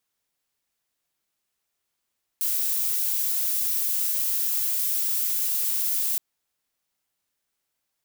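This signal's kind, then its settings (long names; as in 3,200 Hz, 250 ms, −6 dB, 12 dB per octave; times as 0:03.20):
noise violet, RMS −25 dBFS 3.77 s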